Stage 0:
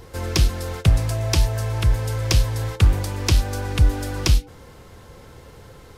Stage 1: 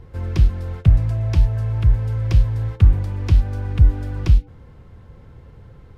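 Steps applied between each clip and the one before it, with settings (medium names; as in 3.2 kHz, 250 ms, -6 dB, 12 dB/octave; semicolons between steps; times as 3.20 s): tone controls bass +11 dB, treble -14 dB; trim -7.5 dB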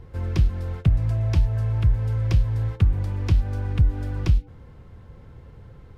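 compression, threshold -12 dBFS, peak gain reduction 6.5 dB; trim -1.5 dB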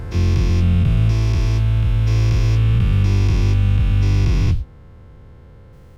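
every event in the spectrogram widened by 480 ms; trim -3.5 dB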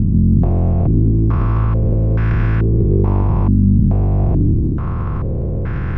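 spectral levelling over time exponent 0.2; transient shaper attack +3 dB, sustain +8 dB; step-sequenced low-pass 2.3 Hz 230–1600 Hz; trim -4 dB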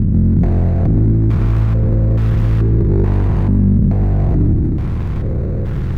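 median filter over 41 samples; saturation -4 dBFS, distortion -23 dB; reverberation RT60 1.1 s, pre-delay 83 ms, DRR 12 dB; trim +1.5 dB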